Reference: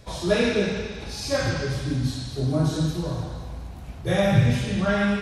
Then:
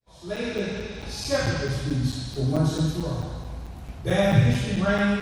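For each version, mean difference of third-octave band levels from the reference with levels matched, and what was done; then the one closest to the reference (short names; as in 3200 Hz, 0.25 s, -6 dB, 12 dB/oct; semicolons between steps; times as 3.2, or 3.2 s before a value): 2.0 dB: opening faded in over 1.08 s; crackling interface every 0.22 s, samples 256, zero, from 0.36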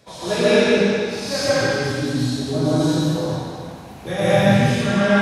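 5.5 dB: HPF 170 Hz 12 dB/oct; plate-style reverb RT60 1.3 s, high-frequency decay 0.8×, pre-delay 0.105 s, DRR -8.5 dB; gain -2 dB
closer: first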